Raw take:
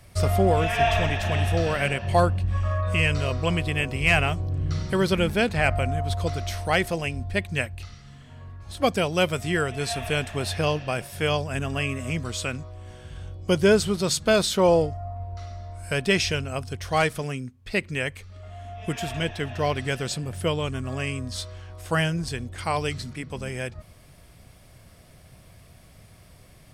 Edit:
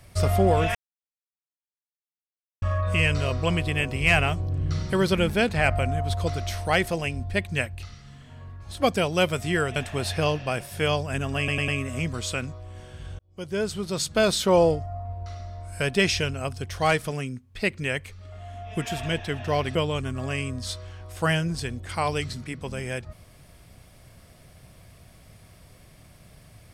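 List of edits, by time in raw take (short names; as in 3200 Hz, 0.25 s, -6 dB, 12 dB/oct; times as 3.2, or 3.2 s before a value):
0.75–2.62 mute
9.76–10.17 cut
11.79 stutter 0.10 s, 4 plays
13.3–14.49 fade in
19.86–20.44 cut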